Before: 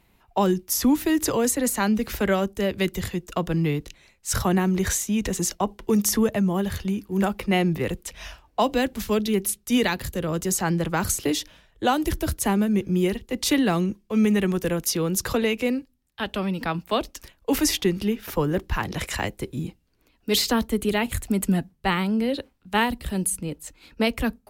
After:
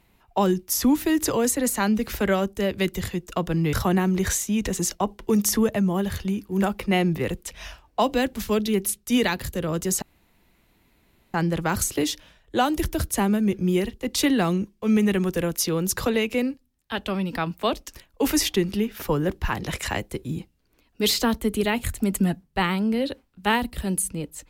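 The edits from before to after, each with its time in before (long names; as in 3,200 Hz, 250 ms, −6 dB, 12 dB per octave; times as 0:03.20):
0:03.73–0:04.33: remove
0:10.62: splice in room tone 1.32 s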